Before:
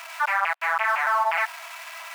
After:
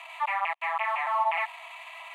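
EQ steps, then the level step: air absorption 67 m; fixed phaser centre 1500 Hz, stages 6; -1.5 dB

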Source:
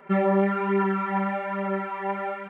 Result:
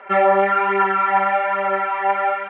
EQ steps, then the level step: speaker cabinet 420–3200 Hz, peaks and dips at 540 Hz +4 dB, 760 Hz +7 dB, 1400 Hz +4 dB; high shelf 2000 Hz +11 dB; +4.5 dB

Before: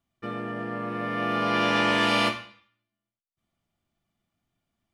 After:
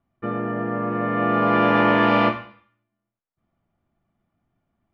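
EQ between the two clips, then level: LPF 1500 Hz 12 dB/oct; +7.5 dB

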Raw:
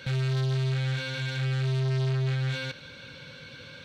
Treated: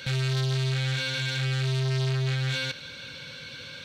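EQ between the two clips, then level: high shelf 2200 Hz +9 dB; 0.0 dB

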